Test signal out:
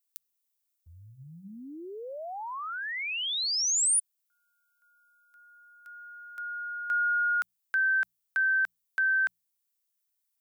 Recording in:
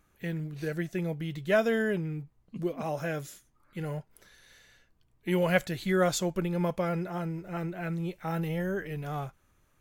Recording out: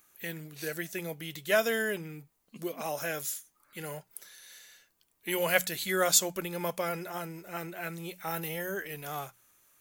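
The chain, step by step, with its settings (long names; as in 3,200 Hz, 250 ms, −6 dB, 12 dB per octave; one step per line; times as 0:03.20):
RIAA equalisation recording
mains-hum notches 60/120/180 Hz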